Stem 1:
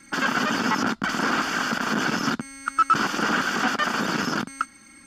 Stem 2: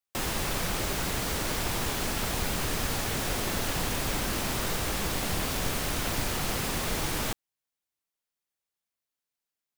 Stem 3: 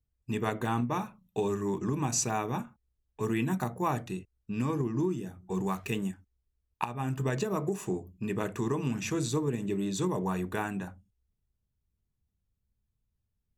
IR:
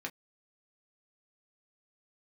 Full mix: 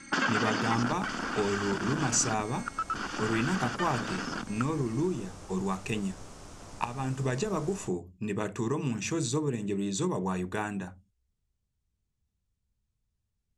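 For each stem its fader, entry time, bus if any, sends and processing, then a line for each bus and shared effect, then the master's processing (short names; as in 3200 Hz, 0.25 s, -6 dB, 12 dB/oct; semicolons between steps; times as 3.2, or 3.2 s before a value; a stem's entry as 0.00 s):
+2.5 dB, 0.00 s, no send, compressor 2.5:1, threshold -28 dBFS, peak gain reduction 9.5 dB; auto duck -8 dB, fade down 1.25 s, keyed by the third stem
-11.5 dB, 0.55 s, no send, band shelf 2700 Hz -8 dB; resonator 100 Hz, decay 0.21 s, harmonics all, mix 50%
0.0 dB, 0.00 s, no send, high shelf 8100 Hz +9.5 dB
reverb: off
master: LPF 8400 Hz 24 dB/oct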